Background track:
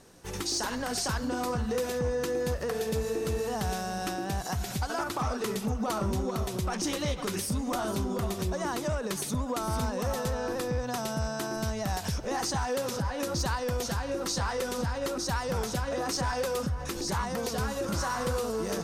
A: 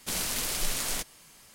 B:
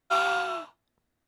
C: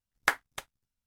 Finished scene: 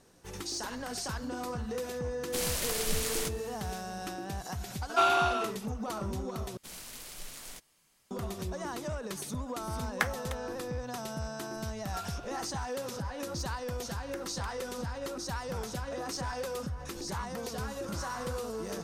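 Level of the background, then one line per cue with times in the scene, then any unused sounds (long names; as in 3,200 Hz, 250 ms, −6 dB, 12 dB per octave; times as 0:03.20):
background track −6 dB
0:02.26: mix in A −2.5 dB
0:04.86: mix in B
0:06.57: overwrite with A −14.5 dB
0:09.73: mix in C −4 dB
0:11.83: mix in B −7.5 dB + noise reduction from a noise print of the clip's start 14 dB
0:13.86: mix in C −4.5 dB + downward compressor, threshold −38 dBFS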